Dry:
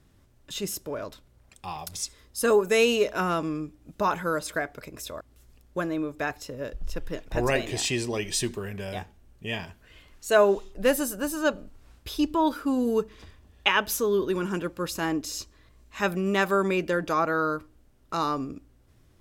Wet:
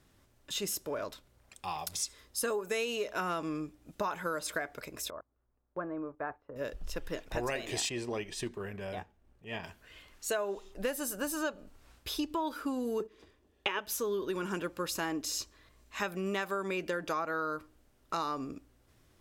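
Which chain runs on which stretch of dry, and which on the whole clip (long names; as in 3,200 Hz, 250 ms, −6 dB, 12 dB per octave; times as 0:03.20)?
0:05.10–0:06.56: transistor ladder low-pass 1,600 Hz, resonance 25% + noise gate −51 dBFS, range −9 dB
0:07.89–0:09.64: transient designer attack −11 dB, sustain −6 dB + high-shelf EQ 2,900 Hz −12 dB
0:13.00–0:13.79: noise gate −43 dBFS, range −11 dB + parametric band 370 Hz +12.5 dB 1.2 octaves
whole clip: low-shelf EQ 300 Hz −8 dB; downward compressor 10 to 1, threshold −30 dBFS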